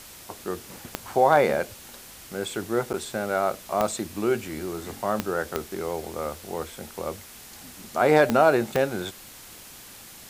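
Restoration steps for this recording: clip repair -7 dBFS; de-click; interpolate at 2.93 s, 9.6 ms; noise reduction 23 dB, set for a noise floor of -45 dBFS

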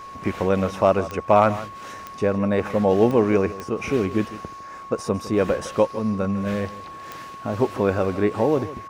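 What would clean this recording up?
clip repair -5.5 dBFS; de-click; band-stop 1.1 kHz, Q 30; inverse comb 156 ms -15.5 dB

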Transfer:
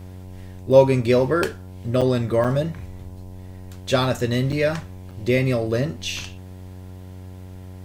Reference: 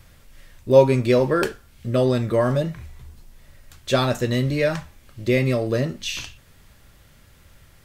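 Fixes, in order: de-hum 92.4 Hz, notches 11; interpolate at 2.01/2.44/4.52/5.11 s, 6.1 ms

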